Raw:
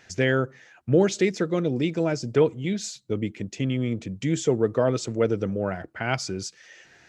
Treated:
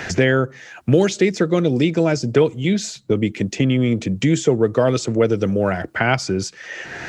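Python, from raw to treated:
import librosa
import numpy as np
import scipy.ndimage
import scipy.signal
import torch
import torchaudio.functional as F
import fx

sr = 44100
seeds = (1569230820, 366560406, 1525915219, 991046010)

y = fx.band_squash(x, sr, depth_pct=70)
y = y * librosa.db_to_amplitude(6.5)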